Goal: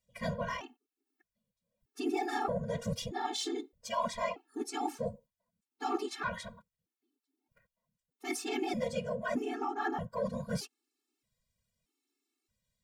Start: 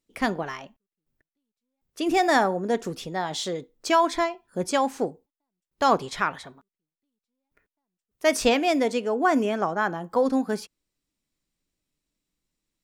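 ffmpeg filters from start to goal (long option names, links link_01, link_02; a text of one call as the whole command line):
ffmpeg -i in.wav -af "asoftclip=type=tanh:threshold=-12.5dB,areverse,acompressor=threshold=-29dB:ratio=16,areverse,afftfilt=real='hypot(re,im)*cos(2*PI*random(0))':imag='hypot(re,im)*sin(2*PI*random(1))':win_size=512:overlap=0.75,afftfilt=real='re*gt(sin(2*PI*0.8*pts/sr)*(1-2*mod(floor(b*sr/1024/230),2)),0)':imag='im*gt(sin(2*PI*0.8*pts/sr)*(1-2*mod(floor(b*sr/1024/230),2)),0)':win_size=1024:overlap=0.75,volume=7.5dB" out.wav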